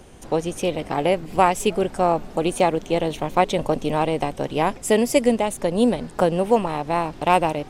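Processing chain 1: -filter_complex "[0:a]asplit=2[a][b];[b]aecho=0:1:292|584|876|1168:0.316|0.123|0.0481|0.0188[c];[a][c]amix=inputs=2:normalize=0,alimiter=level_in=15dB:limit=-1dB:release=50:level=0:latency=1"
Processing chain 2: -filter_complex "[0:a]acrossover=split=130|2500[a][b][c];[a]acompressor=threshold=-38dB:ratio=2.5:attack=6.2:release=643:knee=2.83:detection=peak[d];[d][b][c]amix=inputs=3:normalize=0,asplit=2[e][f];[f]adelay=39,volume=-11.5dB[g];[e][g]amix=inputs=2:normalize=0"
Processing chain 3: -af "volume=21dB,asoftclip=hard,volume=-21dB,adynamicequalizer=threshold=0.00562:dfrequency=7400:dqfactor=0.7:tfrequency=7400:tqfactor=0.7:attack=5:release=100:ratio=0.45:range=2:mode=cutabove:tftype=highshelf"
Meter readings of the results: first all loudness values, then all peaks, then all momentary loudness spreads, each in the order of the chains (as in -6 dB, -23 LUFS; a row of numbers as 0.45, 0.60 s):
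-11.5, -21.5, -26.5 LUFS; -1.0, -2.0, -20.5 dBFS; 3, 6, 3 LU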